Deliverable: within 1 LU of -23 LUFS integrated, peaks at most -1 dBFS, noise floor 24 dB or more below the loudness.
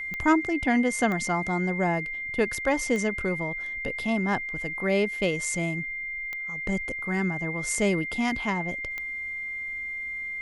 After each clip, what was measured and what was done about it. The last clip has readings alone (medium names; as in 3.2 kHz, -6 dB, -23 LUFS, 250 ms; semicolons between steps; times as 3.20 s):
clicks found 5; steady tone 2.1 kHz; tone level -31 dBFS; loudness -27.0 LUFS; peak level -10.5 dBFS; loudness target -23.0 LUFS
-> de-click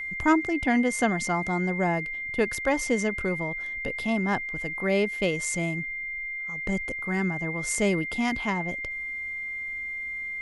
clicks found 0; steady tone 2.1 kHz; tone level -31 dBFS
-> band-stop 2.1 kHz, Q 30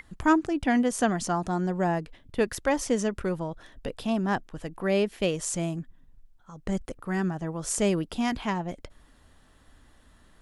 steady tone not found; loudness -28.0 LUFS; peak level -10.5 dBFS; loudness target -23.0 LUFS
-> trim +5 dB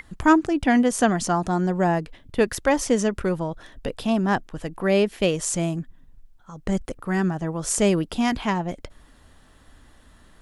loudness -23.0 LUFS; peak level -5.5 dBFS; noise floor -54 dBFS